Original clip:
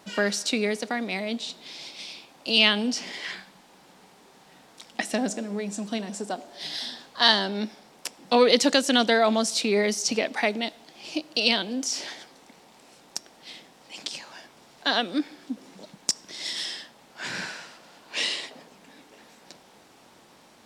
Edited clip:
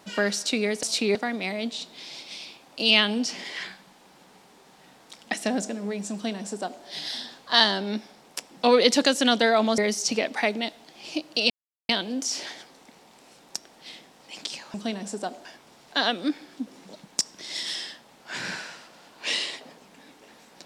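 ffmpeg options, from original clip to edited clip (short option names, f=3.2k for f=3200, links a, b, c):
-filter_complex "[0:a]asplit=7[a][b][c][d][e][f][g];[a]atrim=end=0.832[h];[b]atrim=start=9.458:end=9.782[i];[c]atrim=start=0.828:end=9.462[j];[d]atrim=start=9.778:end=11.5,asetpts=PTS-STARTPTS,afade=t=out:st=1.718:d=0.004:c=hsin,apad=pad_dur=0.39[k];[e]atrim=start=11.5:end=14.352,asetpts=PTS-STARTPTS,afade=t=in:d=0.004:c=hsin[l];[f]atrim=start=5.808:end=6.522[m];[g]atrim=start=14.348[n];[h][i]acrossfade=d=0.004:c1=hsin:c2=hsin[o];[o][j]acrossfade=d=0.004:c1=hsin:c2=hsin[p];[k][l]concat=n=2:v=0:a=1[q];[p][q]acrossfade=d=0.004:c1=hsin:c2=hsin[r];[r][m]acrossfade=d=0.004:c1=hsin:c2=hsin[s];[s][n]acrossfade=d=0.004:c1=hsin:c2=hsin"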